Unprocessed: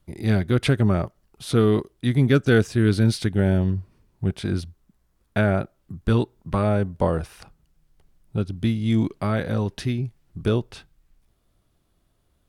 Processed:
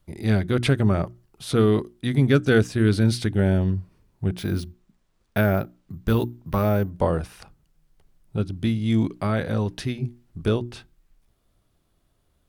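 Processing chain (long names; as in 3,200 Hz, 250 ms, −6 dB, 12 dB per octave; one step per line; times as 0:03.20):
mains-hum notches 60/120/180/240/300/360 Hz
0:04.38–0:06.90: bad sample-rate conversion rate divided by 3×, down none, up hold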